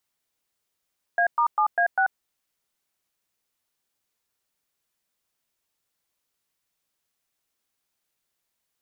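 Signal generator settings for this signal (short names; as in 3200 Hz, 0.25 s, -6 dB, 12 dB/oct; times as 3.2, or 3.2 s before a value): DTMF "A*7A6", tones 88 ms, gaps 0.111 s, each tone -20.5 dBFS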